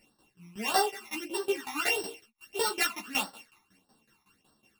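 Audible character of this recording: a buzz of ramps at a fixed pitch in blocks of 16 samples; phasing stages 12, 1.6 Hz, lowest notch 500–2400 Hz; tremolo saw down 5.4 Hz, depth 85%; a shimmering, thickened sound

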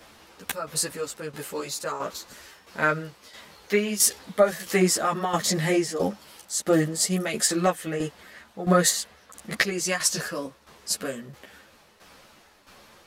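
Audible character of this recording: tremolo saw down 1.5 Hz, depth 70%; a shimmering, thickened sound

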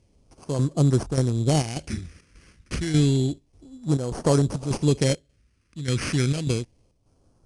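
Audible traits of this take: aliases and images of a low sample rate 3700 Hz, jitter 0%; chopped level 1.7 Hz, depth 60%, duty 75%; phasing stages 2, 0.3 Hz, lowest notch 730–2000 Hz; IMA ADPCM

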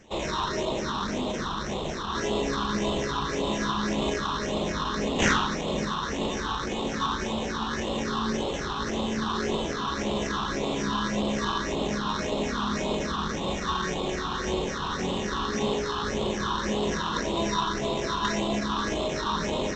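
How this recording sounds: aliases and images of a low sample rate 4700 Hz, jitter 0%; phasing stages 6, 1.8 Hz, lowest notch 550–1600 Hz; G.722

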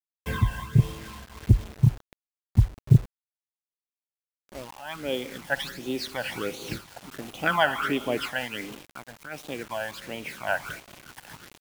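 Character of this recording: phasing stages 12, 1.4 Hz, lowest notch 370–1700 Hz; a quantiser's noise floor 8-bit, dither none; noise-modulated level

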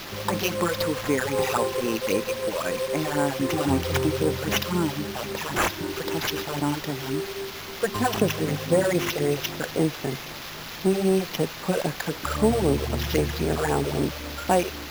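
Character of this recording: a quantiser's noise floor 6-bit, dither triangular; phasing stages 8, 3.8 Hz, lowest notch 230–4600 Hz; aliases and images of a low sample rate 8700 Hz, jitter 0%

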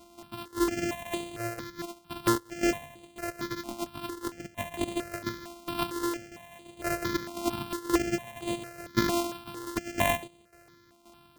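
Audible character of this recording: a buzz of ramps at a fixed pitch in blocks of 128 samples; tremolo saw down 1.9 Hz, depth 70%; notches that jump at a steady rate 4.4 Hz 470–5400 Hz

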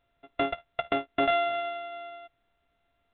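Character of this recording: a buzz of ramps at a fixed pitch in blocks of 64 samples; µ-law

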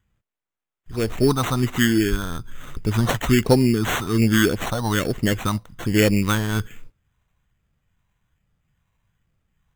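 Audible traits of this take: phasing stages 4, 1.2 Hz, lowest notch 380–1500 Hz; aliases and images of a low sample rate 4900 Hz, jitter 0%

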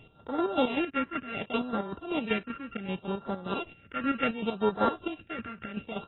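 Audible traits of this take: a buzz of ramps at a fixed pitch in blocks of 32 samples; phasing stages 4, 0.68 Hz, lowest notch 760–2500 Hz; chopped level 5.2 Hz, depth 65%, duty 40%; AAC

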